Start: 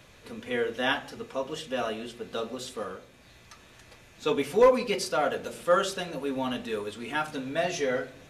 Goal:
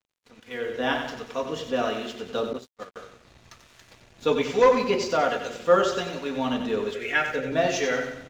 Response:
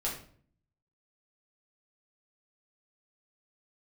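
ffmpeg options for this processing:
-filter_complex "[0:a]acrossover=split=1000[a][b];[a]aeval=exprs='val(0)*(1-0.5/2+0.5/2*cos(2*PI*1.2*n/s))':c=same[c];[b]aeval=exprs='val(0)*(1-0.5/2-0.5/2*cos(2*PI*1.2*n/s))':c=same[d];[c][d]amix=inputs=2:normalize=0,aecho=1:1:92|184|276|368|460|552:0.398|0.191|0.0917|0.044|0.0211|0.0101,dynaudnorm=f=540:g=3:m=10dB,asettb=1/sr,asplit=3[e][f][g];[e]atrim=end=2.534[h];[f]atrim=start=2.53:end=2.96,asetpts=PTS-STARTPTS,afade=t=in:d=0.004:c=qsin,afade=t=out:st=0.426:d=0.004:c=qsin,agate=range=-25dB:threshold=-25dB:ratio=16:detection=peak[i];[g]atrim=start=2.956[j];[h][i]acrossfade=d=0.004:c1=hsin:c2=qsin[k];[k][j]acrossfade=d=0.004:c1=qsin:c2=hsin,aresample=16000,aresample=44100,aeval=exprs='sgn(val(0))*max(abs(val(0))-0.00398,0)':c=same,asettb=1/sr,asplit=3[l][m][n];[l]atrim=end=6.944[o];[m]atrim=start=6.94:end=7.52,asetpts=PTS-STARTPTS,afade=t=in:d=0.004:c=qsin,afade=t=out:st=0.576:d=0.004:c=qsin,equalizer=f=250:t=o:w=1:g=-9,equalizer=f=500:t=o:w=1:g=11,equalizer=f=1k:t=o:w=1:g=-12,equalizer=f=2k:t=o:w=1:g=11,equalizer=f=4k:t=o:w=1:g=-7[p];[n]atrim=start=7.516[q];[o][p]acrossfade=d=0.004:c1=hsin:c2=qsin[r];[r][q]acrossfade=d=0.004:c1=qsin:c2=hsin,volume=-3.5dB"

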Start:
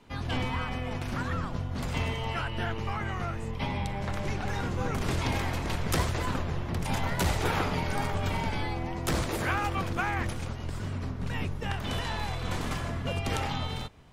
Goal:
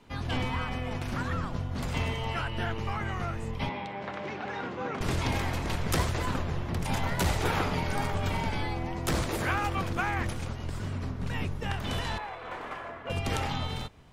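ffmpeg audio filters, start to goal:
-filter_complex "[0:a]asettb=1/sr,asplit=3[a][b][c];[a]atrim=end=3.694[d];[b]atrim=start=3.69:end=5.01,asetpts=PTS-STARTPTS,afade=t=in:d=0.004:c=qsin,afade=t=out:st=1.316:d=0.004:c=qsin,highpass=250,lowpass=3.3k[e];[c]atrim=start=5.006[f];[d][e]acrossfade=d=0.004:c1=hsin:c2=qsin[g];[g][f]acrossfade=d=0.004:c1=qsin:c2=hsin,asettb=1/sr,asplit=3[h][i][j];[h]atrim=end=12.184[k];[i]atrim=start=12.18:end=13.1,asetpts=PTS-STARTPTS,afade=t=in:d=0.004:c=qsin,afade=t=out:st=0.916:d=0.004:c=qsin,acrossover=split=380 2500:gain=0.0891 1 0.1[l][m][n];[l][m][n]amix=inputs=3:normalize=0[o];[j]atrim=start=13.096[p];[k][o]acrossfade=d=0.004:c1=hsin:c2=qsin[q];[q][p]acrossfade=d=0.004:c1=qsin:c2=hsin"

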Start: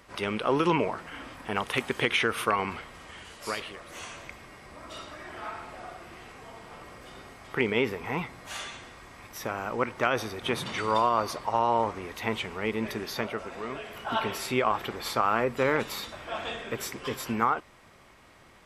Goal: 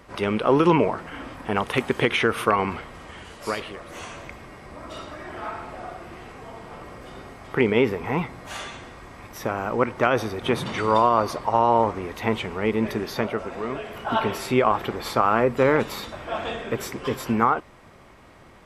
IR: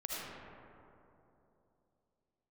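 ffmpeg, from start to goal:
-af "tiltshelf=f=1.4k:g=4,volume=4dB"

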